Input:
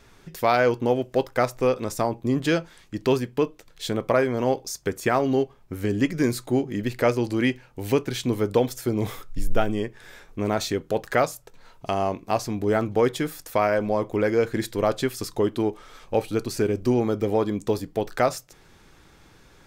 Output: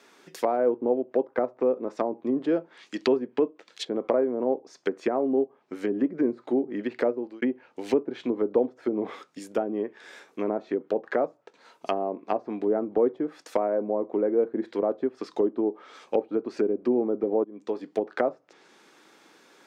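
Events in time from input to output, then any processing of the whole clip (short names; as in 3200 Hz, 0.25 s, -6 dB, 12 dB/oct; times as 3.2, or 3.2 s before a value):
2.38–4.15 high shelf 2000 Hz +11 dB
7.02–7.42 fade out
17.44–17.98 fade in, from -22 dB
whole clip: HPF 250 Hz 24 dB/oct; treble ducked by the level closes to 580 Hz, closed at -21.5 dBFS; bell 12000 Hz -4 dB 0.7 oct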